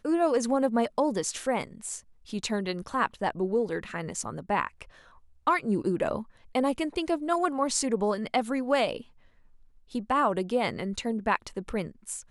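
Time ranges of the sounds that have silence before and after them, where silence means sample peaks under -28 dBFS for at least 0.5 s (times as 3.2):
5.47–8.97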